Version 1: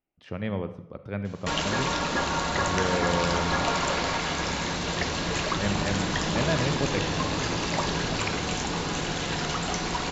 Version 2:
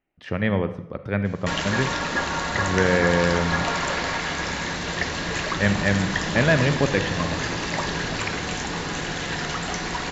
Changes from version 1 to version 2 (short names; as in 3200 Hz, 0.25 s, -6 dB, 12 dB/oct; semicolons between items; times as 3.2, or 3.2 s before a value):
speech +7.5 dB; master: add bell 1800 Hz +7 dB 0.43 oct